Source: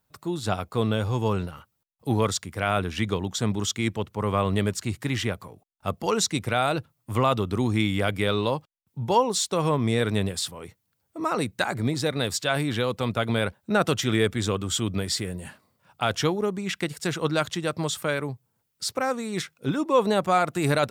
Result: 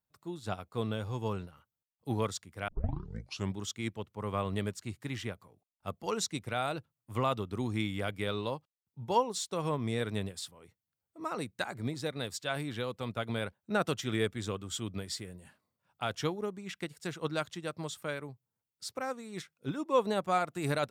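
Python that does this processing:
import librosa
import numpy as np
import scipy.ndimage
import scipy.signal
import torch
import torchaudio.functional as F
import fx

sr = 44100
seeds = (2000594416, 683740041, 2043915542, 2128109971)

y = fx.edit(x, sr, fx.tape_start(start_s=2.68, length_s=0.87), tone=tone)
y = fx.upward_expand(y, sr, threshold_db=-36.0, expansion=1.5)
y = y * 10.0 ** (-6.0 / 20.0)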